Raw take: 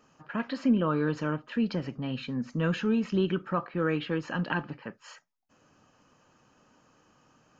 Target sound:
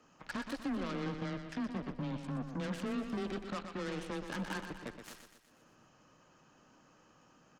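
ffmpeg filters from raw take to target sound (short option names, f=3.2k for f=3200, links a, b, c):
-filter_complex "[0:a]asettb=1/sr,asplit=3[a][b][c];[a]atrim=end=1.064[d];[b]atrim=start=1.06:end=2.37,asetpts=PTS-STARTPTS,afade=t=in:d=0.004:c=qsin,afade=t=out:st=1.306:d=0.004:c=qsin,bass=f=250:g=5,treble=f=4k:g=-14[e];[c]atrim=start=2.366[f];[d][e]acrossfade=d=0.004:c1=hsin:c2=qsin[g];[g][f]acrossfade=d=0.004:c1=qsin:c2=hsin,acompressor=threshold=-45dB:ratio=2.5,asoftclip=type=tanh:threshold=-34.5dB,aeval=exprs='0.0188*(cos(1*acos(clip(val(0)/0.0188,-1,1)))-cos(1*PI/2))+0.00119*(cos(6*acos(clip(val(0)/0.0188,-1,1)))-cos(6*PI/2))+0.00422*(cos(7*acos(clip(val(0)/0.0188,-1,1)))-cos(7*PI/2))':c=same,afreqshift=15,aecho=1:1:122|244|366|488|610|732:0.398|0.215|0.116|0.0627|0.0339|0.0183,volume=3.5dB"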